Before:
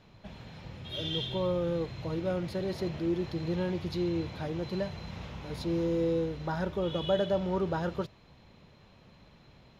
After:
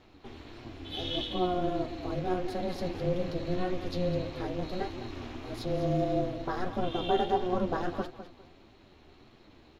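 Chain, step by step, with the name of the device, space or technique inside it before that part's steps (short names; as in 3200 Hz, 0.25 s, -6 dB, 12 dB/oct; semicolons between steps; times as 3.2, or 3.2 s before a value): 2.9–3.35 doubler 48 ms -6.5 dB; feedback echo 0.205 s, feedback 31%, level -12 dB; alien voice (ring modulator 180 Hz; flange 1.6 Hz, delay 7.7 ms, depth 5.6 ms, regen +50%); gain +7 dB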